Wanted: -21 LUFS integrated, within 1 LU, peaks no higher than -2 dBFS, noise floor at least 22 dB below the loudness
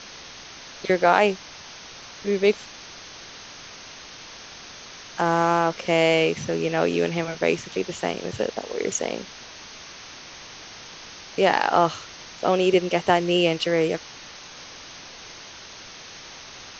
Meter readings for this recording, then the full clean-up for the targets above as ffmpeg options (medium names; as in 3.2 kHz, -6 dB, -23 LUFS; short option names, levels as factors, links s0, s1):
noise floor -42 dBFS; noise floor target -45 dBFS; loudness -23.0 LUFS; peak level -2.5 dBFS; loudness target -21.0 LUFS
-> -af "afftdn=nr=6:nf=-42"
-af "volume=1.26,alimiter=limit=0.794:level=0:latency=1"